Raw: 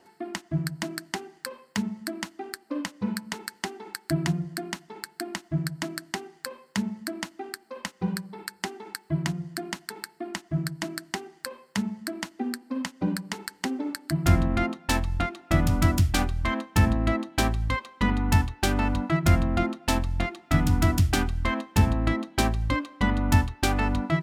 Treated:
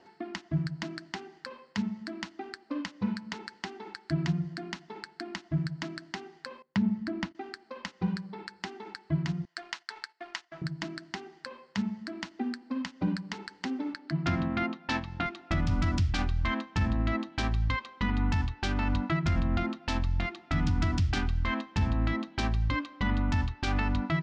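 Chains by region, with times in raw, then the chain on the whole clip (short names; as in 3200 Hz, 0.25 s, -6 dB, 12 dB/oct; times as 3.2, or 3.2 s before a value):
6.62–7.35 gate -50 dBFS, range -20 dB + LPF 2900 Hz 6 dB/oct + low shelf 380 Hz +9.5 dB
9.45–10.62 HPF 1000 Hz + gate -58 dBFS, range -8 dB + sample leveller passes 1
13.94–15.26 HPF 150 Hz + air absorption 87 m
whole clip: LPF 5600 Hz 24 dB/oct; dynamic EQ 500 Hz, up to -7 dB, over -42 dBFS, Q 1; limiter -19 dBFS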